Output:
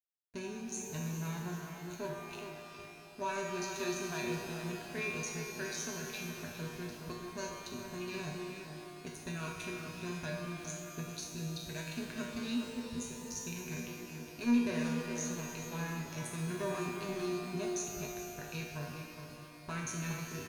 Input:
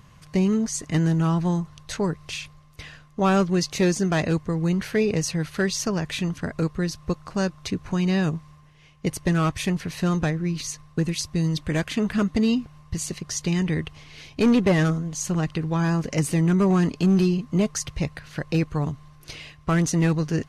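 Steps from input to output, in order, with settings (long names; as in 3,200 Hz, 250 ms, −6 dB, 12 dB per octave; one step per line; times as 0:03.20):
adaptive Wiener filter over 41 samples
tilt shelving filter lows −6.5 dB, about 1,100 Hz
brickwall limiter −19 dBFS, peak gain reduction 10.5 dB
tuned comb filter 120 Hz, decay 0.54 s, harmonics all, mix 90%
centre clipping without the shift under −59 dBFS
EQ curve with evenly spaced ripples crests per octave 1.5, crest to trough 11 dB
slap from a distant wall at 71 metres, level −8 dB
reverb with rising layers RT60 3.5 s, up +12 semitones, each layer −8 dB, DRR 2 dB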